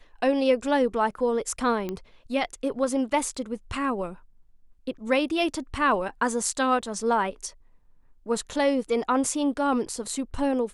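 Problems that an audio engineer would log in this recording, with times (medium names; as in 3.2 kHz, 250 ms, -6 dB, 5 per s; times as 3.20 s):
1.89 s: pop -18 dBFS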